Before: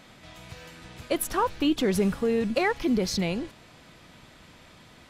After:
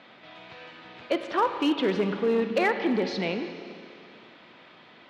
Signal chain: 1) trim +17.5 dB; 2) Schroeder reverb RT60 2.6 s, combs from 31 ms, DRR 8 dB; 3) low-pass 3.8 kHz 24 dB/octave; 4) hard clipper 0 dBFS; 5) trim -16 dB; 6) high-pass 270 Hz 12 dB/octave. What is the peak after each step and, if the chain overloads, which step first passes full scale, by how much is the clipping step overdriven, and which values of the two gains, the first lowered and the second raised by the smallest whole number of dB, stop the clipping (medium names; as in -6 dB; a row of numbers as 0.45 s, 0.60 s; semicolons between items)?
+5.0 dBFS, +5.0 dBFS, +5.0 dBFS, 0.0 dBFS, -16.0 dBFS, -13.0 dBFS; step 1, 5.0 dB; step 1 +12.5 dB, step 5 -11 dB